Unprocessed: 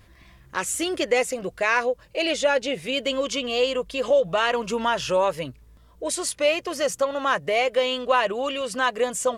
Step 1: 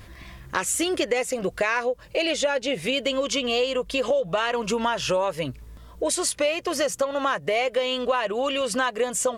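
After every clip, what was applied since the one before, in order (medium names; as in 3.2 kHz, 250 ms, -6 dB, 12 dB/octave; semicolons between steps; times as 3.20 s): compression 4:1, threshold -31 dBFS, peak gain reduction 13.5 dB; trim +8.5 dB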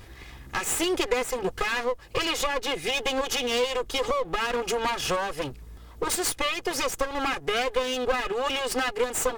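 comb filter that takes the minimum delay 2.4 ms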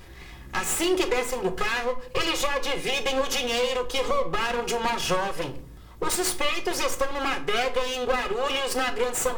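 simulated room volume 490 m³, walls furnished, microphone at 1 m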